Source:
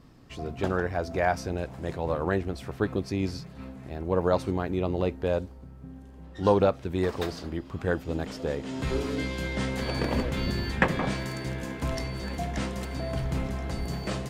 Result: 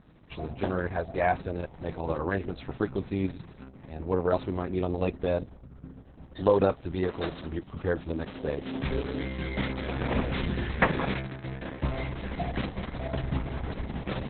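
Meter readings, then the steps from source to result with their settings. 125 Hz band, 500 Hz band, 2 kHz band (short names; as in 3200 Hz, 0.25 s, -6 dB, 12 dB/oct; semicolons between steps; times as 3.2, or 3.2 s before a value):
-1.5 dB, -1.0 dB, -1.0 dB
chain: Opus 6 kbps 48000 Hz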